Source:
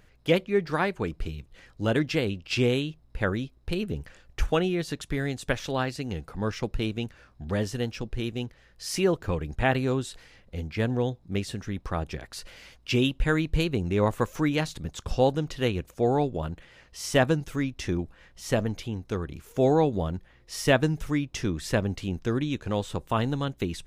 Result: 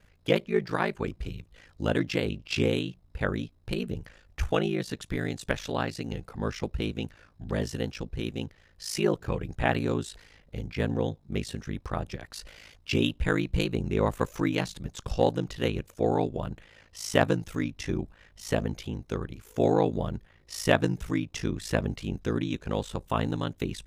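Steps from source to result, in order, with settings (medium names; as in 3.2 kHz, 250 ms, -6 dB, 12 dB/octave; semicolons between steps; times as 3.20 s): ring modulator 27 Hz; Chebyshev shaper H 3 -19 dB, 5 -31 dB, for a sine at -8.5 dBFS; trim +3 dB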